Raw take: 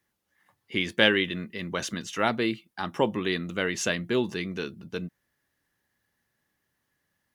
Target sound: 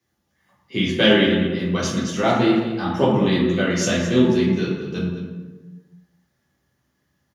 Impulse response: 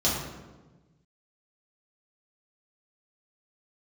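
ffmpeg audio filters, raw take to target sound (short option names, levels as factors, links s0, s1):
-filter_complex "[0:a]aecho=1:1:214:0.224[s0];[1:a]atrim=start_sample=2205[s1];[s0][s1]afir=irnorm=-1:irlink=0,volume=0.447"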